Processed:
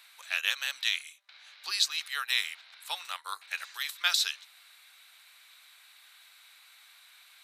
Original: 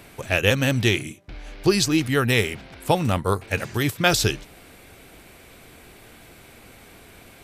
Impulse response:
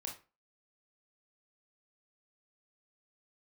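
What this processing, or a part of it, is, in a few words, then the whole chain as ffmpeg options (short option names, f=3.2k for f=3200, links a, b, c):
headphones lying on a table: -af "highpass=f=1.1k:w=0.5412,highpass=f=1.1k:w=1.3066,equalizer=f=3.9k:t=o:w=0.32:g=11.5,volume=-8dB"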